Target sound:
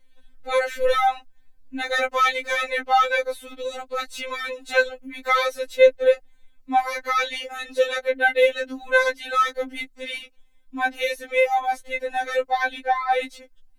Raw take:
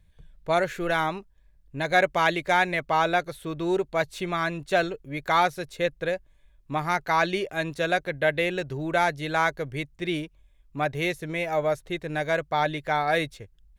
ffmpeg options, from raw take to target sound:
-filter_complex "[0:a]asettb=1/sr,asplit=3[a][b][c];[a]atrim=end=12.824[d];[b]atrim=start=12.82:end=13.23,asetpts=PTS-STARTPTS,afade=t=in:d=0.004:c=qsin,afade=t=out:st=0.406:d=0.004:c=qsin,highshelf=f=4.1k:g=-11.5[e];[c]atrim=start=13.226[f];[d][e]acrossfade=d=0.004:c1=hsin:c2=qsin[g];[g][f]acrossfade=d=0.004:c1=qsin:c2=hsin,afftfilt=real='re*3.46*eq(mod(b,12),0)':imag='im*3.46*eq(mod(b,12),0)':win_size=2048:overlap=0.75,volume=6.5dB"

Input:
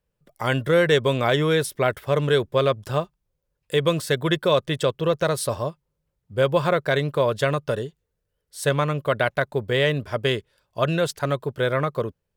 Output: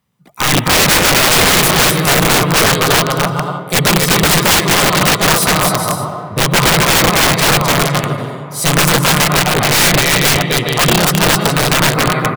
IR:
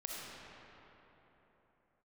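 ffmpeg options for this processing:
-filter_complex "[0:a]highpass=130,aecho=1:1:1:0.69,asplit=2[a][b];[b]asetrate=52444,aresample=44100,atempo=0.840896,volume=-2dB[c];[a][c]amix=inputs=2:normalize=0,aecho=1:1:260|416|509.6|565.8|599.5:0.631|0.398|0.251|0.158|0.1,asplit=2[d][e];[1:a]atrim=start_sample=2205,asetrate=33075,aresample=44100[f];[e][f]afir=irnorm=-1:irlink=0,volume=-13.5dB[g];[d][g]amix=inputs=2:normalize=0,aeval=exprs='(mod(4.73*val(0)+1,2)-1)/4.73':c=same,volume=8.5dB"

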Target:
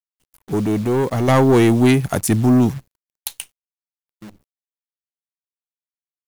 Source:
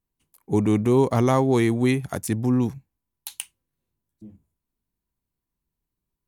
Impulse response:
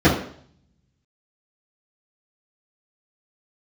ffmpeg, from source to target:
-filter_complex "[0:a]asoftclip=type=tanh:threshold=-17.5dB,asettb=1/sr,asplit=3[a][b][c];[a]atrim=end=1.284[d];[b]atrim=start=1.28:end=3.28,asetpts=PTS-STARTPTS,afade=t=in:d=0.004:c=qsin,afade=t=out:st=1.996:d=0.004:c=qsin,acontrast=58[e];[c]atrim=start=3.276[f];[d][e]acrossfade=d=0.004:c1=hsin:c2=qsin[g];[g][f]acrossfade=d=0.004:c1=qsin:c2=hsin,acrusher=bits=8:dc=4:mix=0:aa=0.000001,volume=4dB"

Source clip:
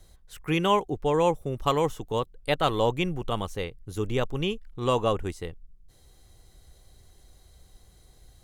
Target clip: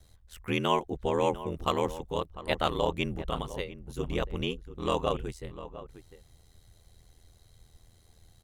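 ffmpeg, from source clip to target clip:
-filter_complex "[0:a]equalizer=f=2.8k:t=o:w=1.6:g=2,asplit=2[a][b];[b]adelay=699.7,volume=-14dB,highshelf=f=4k:g=-15.7[c];[a][c]amix=inputs=2:normalize=0,aeval=exprs='val(0)*sin(2*PI*41*n/s)':c=same,volume=-1.5dB"

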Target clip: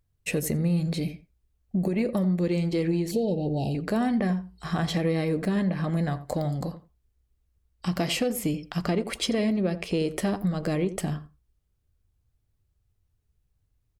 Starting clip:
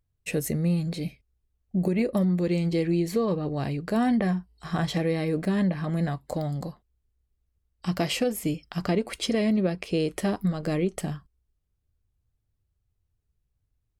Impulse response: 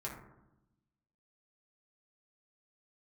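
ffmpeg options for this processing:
-filter_complex "[0:a]acompressor=threshold=-28dB:ratio=2,asoftclip=type=tanh:threshold=-16.5dB,asettb=1/sr,asplit=3[a][b][c];[a]atrim=end=3.114[d];[b]atrim=start=3.11:end=3.75,asetpts=PTS-STARTPTS,afade=t=in:d=0.004:c=qsin,afade=t=out:st=0.636:d=0.004:c=qsin,asuperstop=centerf=1500:order=20:qfactor=0.89[e];[c]atrim=start=3.746[f];[d][e]acrossfade=d=0.004:c1=hsin:c2=qsin[g];[g][f]acrossfade=d=0.004:c1=qsin:c2=hsin,asplit=2[h][i];[i]adelay=86,lowpass=f=1.1k:p=1,volume=-12dB,asplit=2[j][k];[k]adelay=86,lowpass=f=1.1k:p=1,volume=0.16[l];[h][j][l]amix=inputs=3:normalize=0,volume=3.5dB"

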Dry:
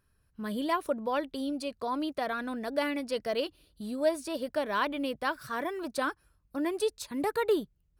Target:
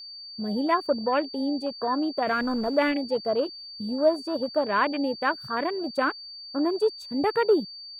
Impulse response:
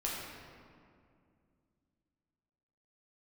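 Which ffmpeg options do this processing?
-filter_complex "[0:a]asettb=1/sr,asplit=3[a][b][c];[a]atrim=end=2.274[d];[b]atrim=start=2.27:end=2.92,asetpts=PTS-STARTPTS,afade=t=in:d=0.004:c=qsin,afade=t=out:st=0.646:d=0.004:c=qsin,aeval=exprs='val(0)+0.5*0.015*sgn(val(0))':c=same[e];[c]atrim=start=2.916[f];[d][e]acrossfade=d=0.004:c1=hsin:c2=qsin[g];[g][f]acrossfade=d=0.004:c1=qsin:c2=hsin,afwtdn=0.0141,aeval=exprs='val(0)+0.00562*sin(2*PI*4600*n/s)':c=same,volume=6dB"

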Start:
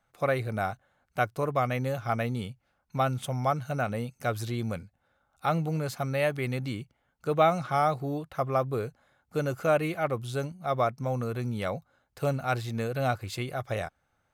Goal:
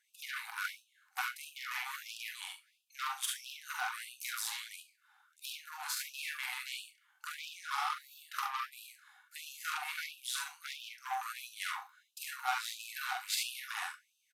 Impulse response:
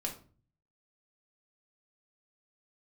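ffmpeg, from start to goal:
-filter_complex "[0:a]equalizer=f=560:w=7.1:g=4,acompressor=threshold=-33dB:ratio=12,aecho=1:1:45|71:0.668|0.596,aeval=exprs='0.0794*(cos(1*acos(clip(val(0)/0.0794,-1,1)))-cos(1*PI/2))+0.00891*(cos(8*acos(clip(val(0)/0.0794,-1,1)))-cos(8*PI/2))':c=same,asplit=2[a][b];[b]adelay=41,volume=-14dB[c];[a][c]amix=inputs=2:normalize=0,asplit=2[d][e];[1:a]atrim=start_sample=2205,highshelf=f=5.5k:g=11[f];[e][f]afir=irnorm=-1:irlink=0,volume=-5.5dB[g];[d][g]amix=inputs=2:normalize=0,aresample=32000,aresample=44100,afftfilt=real='re*gte(b*sr/1024,730*pow(2500/730,0.5+0.5*sin(2*PI*1.5*pts/sr)))':imag='im*gte(b*sr/1024,730*pow(2500/730,0.5+0.5*sin(2*PI*1.5*pts/sr)))':win_size=1024:overlap=0.75"

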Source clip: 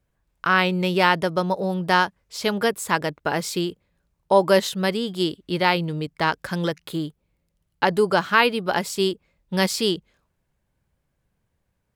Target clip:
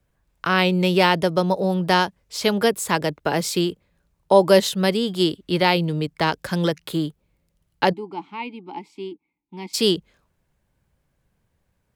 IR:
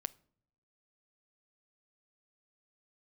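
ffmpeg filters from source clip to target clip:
-filter_complex "[0:a]acrossover=split=250|1000|1900[a][b][c][d];[c]acompressor=threshold=-41dB:ratio=6[e];[a][b][e][d]amix=inputs=4:normalize=0,asplit=3[f][g][h];[f]afade=t=out:st=7.92:d=0.02[i];[g]asplit=3[j][k][l];[j]bandpass=f=300:t=q:w=8,volume=0dB[m];[k]bandpass=f=870:t=q:w=8,volume=-6dB[n];[l]bandpass=f=2.24k:t=q:w=8,volume=-9dB[o];[m][n][o]amix=inputs=3:normalize=0,afade=t=in:st=7.92:d=0.02,afade=t=out:st=9.73:d=0.02[p];[h]afade=t=in:st=9.73:d=0.02[q];[i][p][q]amix=inputs=3:normalize=0,volume=3.5dB"

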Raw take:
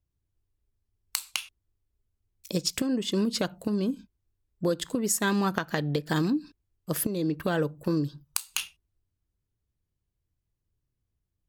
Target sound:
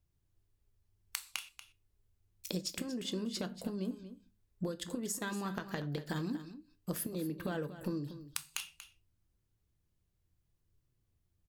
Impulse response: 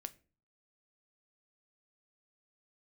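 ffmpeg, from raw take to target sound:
-filter_complex "[0:a]acompressor=threshold=-38dB:ratio=8,aecho=1:1:236:0.224[a];[1:a]atrim=start_sample=2205,afade=t=out:st=0.18:d=0.01,atrim=end_sample=8379[b];[a][b]afir=irnorm=-1:irlink=0,volume=6.5dB"

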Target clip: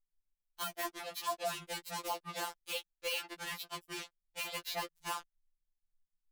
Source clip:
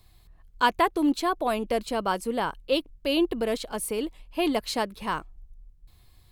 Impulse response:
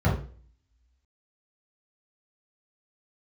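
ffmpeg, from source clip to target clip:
-filter_complex "[0:a]afreqshift=-60,acrossover=split=340 6900:gain=0.224 1 0.1[a][b][c];[a][b][c]amix=inputs=3:normalize=0,acrossover=split=110[d][e];[e]acrusher=bits=4:mix=0:aa=0.5[f];[d][f]amix=inputs=2:normalize=0,acrossover=split=460|3900[g][h][i];[g]acompressor=threshold=-42dB:ratio=4[j];[h]acompressor=threshold=-28dB:ratio=4[k];[i]acompressor=threshold=-47dB:ratio=4[l];[j][k][l]amix=inputs=3:normalize=0,crystalizer=i=3:c=0,afftfilt=real='re*2.83*eq(mod(b,8),0)':imag='im*2.83*eq(mod(b,8),0)':win_size=2048:overlap=0.75,volume=-6dB"

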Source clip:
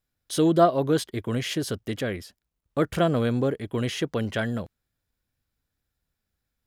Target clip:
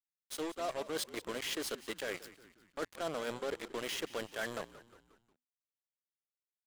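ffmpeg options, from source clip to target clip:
-filter_complex "[0:a]highpass=490,areverse,acompressor=threshold=-32dB:ratio=12,areverse,aeval=exprs='val(0)+0.000794*sin(2*PI*7500*n/s)':c=same,acrusher=bits=5:mix=0:aa=0.5,asplit=5[a][b][c][d][e];[b]adelay=179,afreqshift=-62,volume=-16.5dB[f];[c]adelay=358,afreqshift=-124,volume=-22.5dB[g];[d]adelay=537,afreqshift=-186,volume=-28.5dB[h];[e]adelay=716,afreqshift=-248,volume=-34.6dB[i];[a][f][g][h][i]amix=inputs=5:normalize=0,volume=-2.5dB"

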